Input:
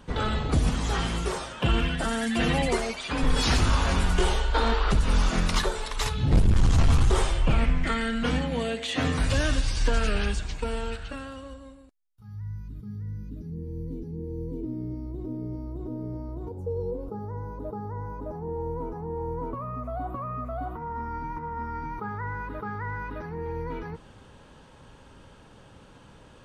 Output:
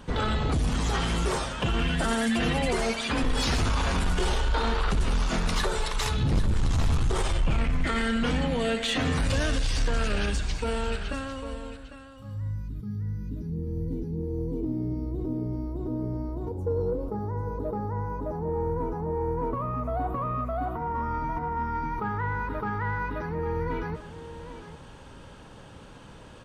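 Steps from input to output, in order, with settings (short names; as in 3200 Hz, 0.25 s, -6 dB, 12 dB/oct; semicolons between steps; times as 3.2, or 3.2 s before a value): limiter -20 dBFS, peak gain reduction 6.5 dB; soft clip -21.5 dBFS, distortion -19 dB; on a send: echo 0.8 s -12.5 dB; on the sum: gain +4 dB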